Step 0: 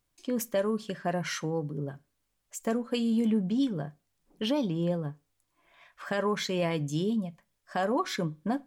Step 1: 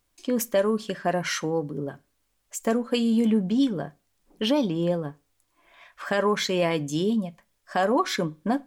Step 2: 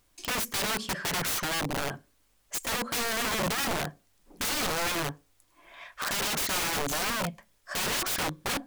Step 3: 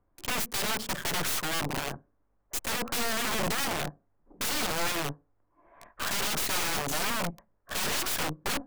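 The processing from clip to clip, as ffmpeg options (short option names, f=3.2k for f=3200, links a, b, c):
-af "equalizer=f=140:t=o:w=0.67:g=-7.5,volume=6dB"
-filter_complex "[0:a]asplit=2[a][b];[b]acompressor=threshold=-31dB:ratio=8,volume=-2dB[c];[a][c]amix=inputs=2:normalize=0,aeval=exprs='(mod(16.8*val(0)+1,2)-1)/16.8':c=same"
-filter_complex "[0:a]aeval=exprs='0.0596*(cos(1*acos(clip(val(0)/0.0596,-1,1)))-cos(1*PI/2))+0.0188*(cos(4*acos(clip(val(0)/0.0596,-1,1)))-cos(4*PI/2))':c=same,acrossover=split=150|1400[a][b][c];[c]acrusher=bits=5:mix=0:aa=0.000001[d];[a][b][d]amix=inputs=3:normalize=0,volume=-1.5dB"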